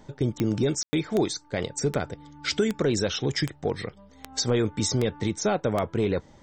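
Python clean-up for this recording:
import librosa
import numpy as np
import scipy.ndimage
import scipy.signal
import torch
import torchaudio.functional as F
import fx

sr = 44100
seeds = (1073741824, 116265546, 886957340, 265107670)

y = fx.fix_declick_ar(x, sr, threshold=10.0)
y = fx.fix_ambience(y, sr, seeds[0], print_start_s=3.88, print_end_s=4.38, start_s=0.83, end_s=0.93)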